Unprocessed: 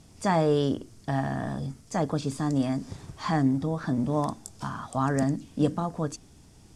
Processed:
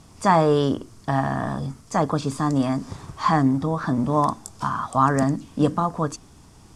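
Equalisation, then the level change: peaking EQ 1.1 kHz +9 dB 0.7 oct; +4.0 dB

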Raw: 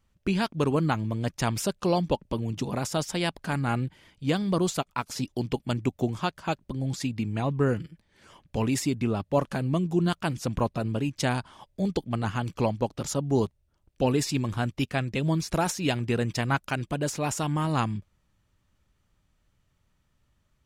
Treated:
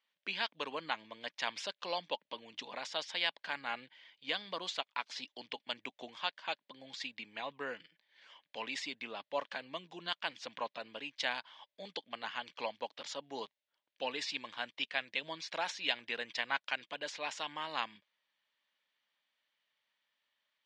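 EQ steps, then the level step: cabinet simulation 340–3300 Hz, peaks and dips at 370 Hz -9 dB, 740 Hz -3 dB, 1.3 kHz -9 dB, 2.6 kHz -5 dB; differentiator; +12.0 dB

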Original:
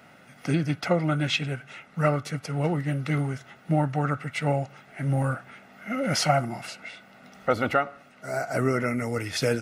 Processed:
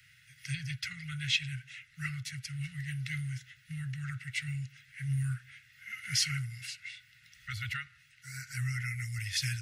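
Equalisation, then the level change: Chebyshev band-stop 130–1700 Hz, order 4; peaking EQ 530 Hz -10 dB 2.1 oct; -1.0 dB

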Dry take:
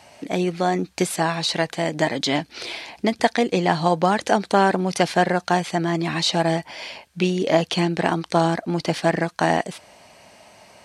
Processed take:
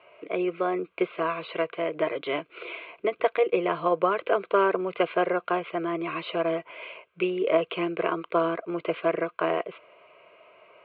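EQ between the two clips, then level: distance through air 270 m; cabinet simulation 400–2400 Hz, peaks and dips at 570 Hz -6 dB, 860 Hz -8 dB, 1.4 kHz -4 dB; static phaser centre 1.2 kHz, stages 8; +5.5 dB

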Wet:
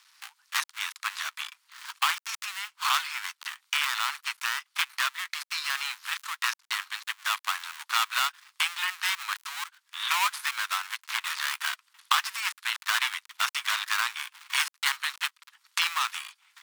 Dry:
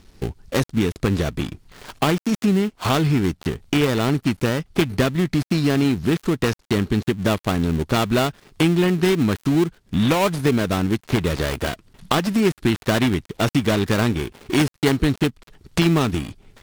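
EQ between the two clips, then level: steep high-pass 990 Hz 48 dB/octave; 0.0 dB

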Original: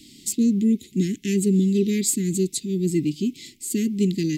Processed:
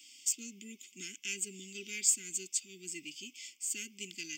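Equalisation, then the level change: resonant high-pass 1.1 kHz, resonance Q 8.2; static phaser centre 2.7 kHz, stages 8; -2.0 dB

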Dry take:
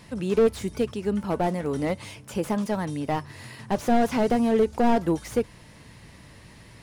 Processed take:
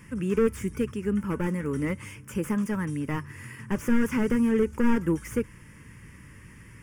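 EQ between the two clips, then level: static phaser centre 1.7 kHz, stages 4; +1.5 dB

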